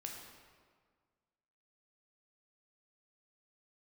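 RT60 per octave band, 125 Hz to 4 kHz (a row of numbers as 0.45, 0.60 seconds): 1.9, 1.8, 1.7, 1.7, 1.4, 1.2 seconds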